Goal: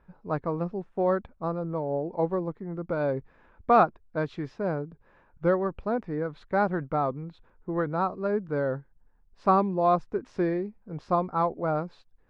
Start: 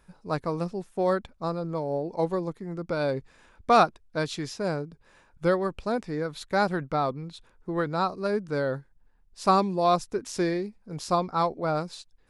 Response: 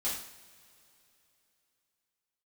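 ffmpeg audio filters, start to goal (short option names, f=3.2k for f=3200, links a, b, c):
-af "lowpass=1.6k"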